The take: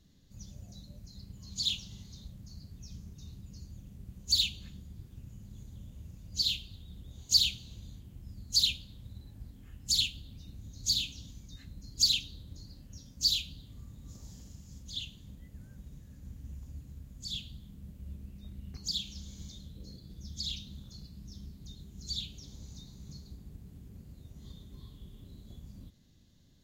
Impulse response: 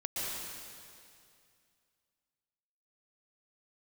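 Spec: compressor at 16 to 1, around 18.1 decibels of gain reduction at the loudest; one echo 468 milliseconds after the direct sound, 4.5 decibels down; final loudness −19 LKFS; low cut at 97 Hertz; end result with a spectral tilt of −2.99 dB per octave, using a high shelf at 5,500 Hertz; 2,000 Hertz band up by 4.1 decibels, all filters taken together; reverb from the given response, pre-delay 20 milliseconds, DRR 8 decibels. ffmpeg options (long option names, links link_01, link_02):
-filter_complex "[0:a]highpass=97,equalizer=frequency=2000:width_type=o:gain=7.5,highshelf=frequency=5500:gain=-3,acompressor=threshold=-39dB:ratio=16,aecho=1:1:468:0.596,asplit=2[link_01][link_02];[1:a]atrim=start_sample=2205,adelay=20[link_03];[link_02][link_03]afir=irnorm=-1:irlink=0,volume=-12.5dB[link_04];[link_01][link_04]amix=inputs=2:normalize=0,volume=26dB"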